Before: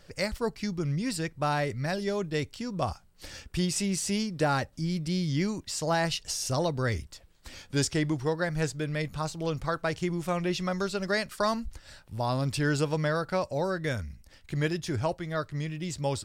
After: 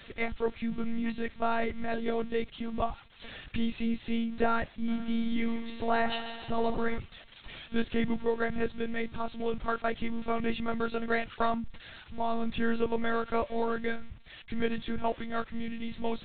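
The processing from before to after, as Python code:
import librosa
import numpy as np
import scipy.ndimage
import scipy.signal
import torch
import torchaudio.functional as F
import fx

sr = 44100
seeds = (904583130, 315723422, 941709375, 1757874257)

y = x + 0.5 * 10.0 ** (-28.0 / 20.0) * np.diff(np.sign(x), prepend=np.sign(x[:1]))
y = fx.high_shelf(y, sr, hz=3100.0, db=-4.0)
y = fx.echo_heads(y, sr, ms=70, heads='first and second', feedback_pct=64, wet_db=-13.0, at=(4.88, 6.98), fade=0.02)
y = fx.lpc_monotone(y, sr, seeds[0], pitch_hz=230.0, order=16)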